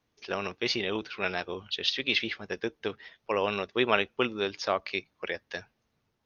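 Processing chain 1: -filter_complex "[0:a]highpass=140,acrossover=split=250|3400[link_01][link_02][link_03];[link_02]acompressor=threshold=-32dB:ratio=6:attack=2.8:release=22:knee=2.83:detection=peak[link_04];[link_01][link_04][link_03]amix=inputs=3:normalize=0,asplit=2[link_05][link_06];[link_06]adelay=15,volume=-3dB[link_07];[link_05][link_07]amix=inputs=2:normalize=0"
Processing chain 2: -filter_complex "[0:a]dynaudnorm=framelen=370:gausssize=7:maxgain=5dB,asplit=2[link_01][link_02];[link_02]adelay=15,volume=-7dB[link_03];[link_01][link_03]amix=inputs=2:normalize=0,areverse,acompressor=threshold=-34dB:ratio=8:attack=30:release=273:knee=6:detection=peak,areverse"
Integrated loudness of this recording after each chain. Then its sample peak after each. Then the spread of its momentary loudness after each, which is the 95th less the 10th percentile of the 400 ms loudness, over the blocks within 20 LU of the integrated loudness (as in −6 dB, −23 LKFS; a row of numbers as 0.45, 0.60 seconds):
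−32.0, −36.0 LKFS; −13.0, −17.5 dBFS; 9, 6 LU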